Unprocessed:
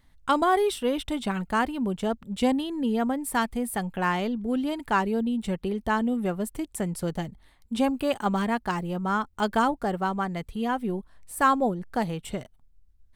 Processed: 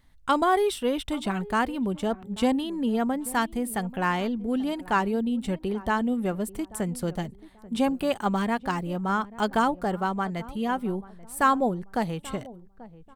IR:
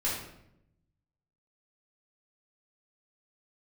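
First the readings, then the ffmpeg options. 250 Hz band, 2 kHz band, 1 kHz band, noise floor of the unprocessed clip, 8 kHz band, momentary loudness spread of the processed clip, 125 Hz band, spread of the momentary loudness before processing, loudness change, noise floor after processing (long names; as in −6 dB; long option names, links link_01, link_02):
0.0 dB, 0.0 dB, 0.0 dB, −60 dBFS, 0.0 dB, 8 LU, 0.0 dB, 8 LU, 0.0 dB, −52 dBFS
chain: -filter_complex "[0:a]asplit=2[link_01][link_02];[link_02]adelay=836,lowpass=frequency=870:poles=1,volume=-17.5dB,asplit=2[link_03][link_04];[link_04]adelay=836,lowpass=frequency=870:poles=1,volume=0.36,asplit=2[link_05][link_06];[link_06]adelay=836,lowpass=frequency=870:poles=1,volume=0.36[link_07];[link_01][link_03][link_05][link_07]amix=inputs=4:normalize=0"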